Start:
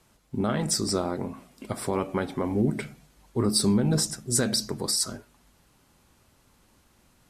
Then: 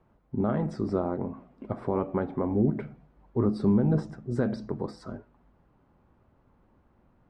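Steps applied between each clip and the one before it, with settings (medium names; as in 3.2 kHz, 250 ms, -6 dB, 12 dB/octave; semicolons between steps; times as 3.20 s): low-pass 1.1 kHz 12 dB/octave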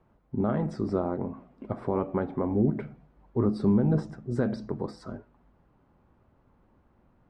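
no audible change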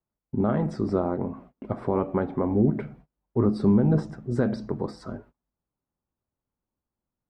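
gate -51 dBFS, range -28 dB; trim +3 dB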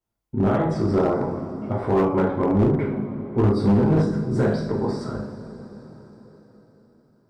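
two-slope reverb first 0.52 s, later 4.6 s, from -18 dB, DRR -5.5 dB; hard clipper -13.5 dBFS, distortion -14 dB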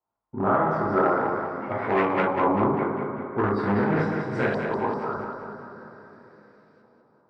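tilt EQ +3.5 dB/octave; LFO low-pass saw up 0.44 Hz 930–2500 Hz; two-band feedback delay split 320 Hz, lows 86 ms, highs 197 ms, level -6 dB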